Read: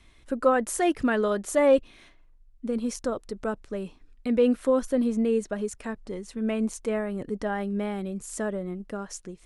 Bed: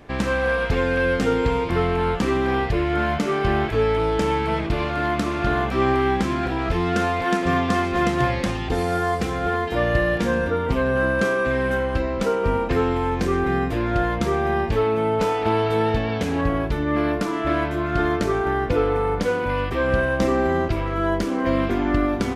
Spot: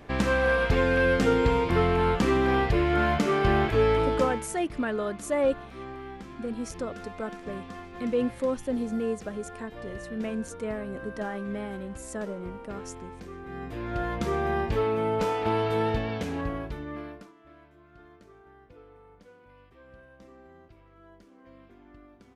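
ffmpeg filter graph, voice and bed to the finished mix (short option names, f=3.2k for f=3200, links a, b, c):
-filter_complex "[0:a]adelay=3750,volume=-5dB[a];[1:a]volume=13dB,afade=t=out:st=3.94:d=0.55:silence=0.11885,afade=t=in:st=13.44:d=0.94:silence=0.177828,afade=t=out:st=15.87:d=1.47:silence=0.0473151[b];[a][b]amix=inputs=2:normalize=0"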